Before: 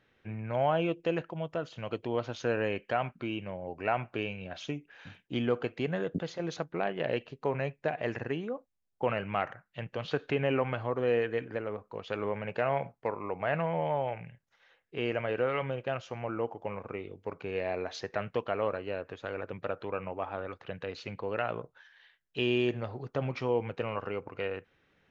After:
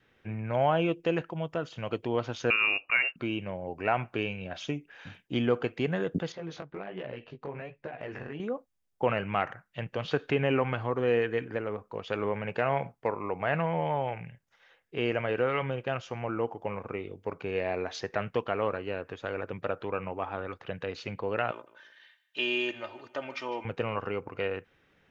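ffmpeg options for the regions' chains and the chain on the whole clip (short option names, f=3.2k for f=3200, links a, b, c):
-filter_complex "[0:a]asettb=1/sr,asplit=3[a][b][c];[a]atrim=end=2.504[d];[b]atrim=start=2.5:end=3.16,asetpts=PTS-STARTPTS,afade=t=in:d=0.004:c=qsin,afade=t=out:st=0.656:d=0.004:c=qsin,lowshelf=f=160:g=8.5,lowpass=f=2.5k:t=q:w=0.5098,lowpass=f=2.5k:t=q:w=0.6013,lowpass=f=2.5k:t=q:w=0.9,lowpass=f=2.5k:t=q:w=2.563,afreqshift=-2900[e];[c]atrim=start=3.156[f];[d][e]acrossfade=d=0.004:c1=hsin:c2=qsin[g];[g][f]acrossfade=d=0.004:c1=qsin:c2=hsin,asettb=1/sr,asplit=3[h][i][j];[h]atrim=end=6.324[k];[i]atrim=start=6.32:end=8.4,asetpts=PTS-STARTPTS,afade=t=in:d=0.004:c=qsin,afade=t=out:st=2.076:d=0.004:c=qsin,lowpass=4.5k,acompressor=threshold=-33dB:ratio=10:attack=3.2:release=140:knee=1:detection=peak,flanger=delay=15:depth=6.7:speed=1.3[l];[j]atrim=start=8.396[m];[k][l]acrossfade=d=0.004:c1=hsin:c2=qsin[n];[n][m]acrossfade=d=0.004:c1=qsin:c2=hsin,asettb=1/sr,asplit=3[o][p][q];[o]atrim=end=21.514[r];[p]atrim=start=21.51:end=23.65,asetpts=PTS-STARTPTS,afade=t=in:d=0.004:c=qsin,afade=t=out:st=2.136:d=0.004:c=qsin,highpass=f=1.1k:p=1,aecho=1:1:3.3:0.64,atrim=end_sample=94374,aecho=1:1:153|306|459:0.141|0.0494|0.0173,atrim=end_sample=94374[s];[q]atrim=start=23.646[t];[r][s]acrossfade=d=0.004:c1=hsin:c2=qsin[u];[u][t]acrossfade=d=0.004:c1=qsin:c2=hsin,bandreject=f=4.1k:w=19,adynamicequalizer=threshold=0.00447:dfrequency=600:dqfactor=3.8:tfrequency=600:tqfactor=3.8:attack=5:release=100:ratio=0.375:range=3:mode=cutabove:tftype=bell,volume=3dB"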